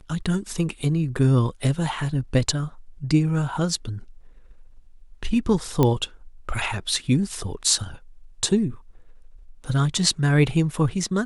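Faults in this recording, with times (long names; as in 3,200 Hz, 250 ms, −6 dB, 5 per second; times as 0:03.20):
0:05.83: click −7 dBFS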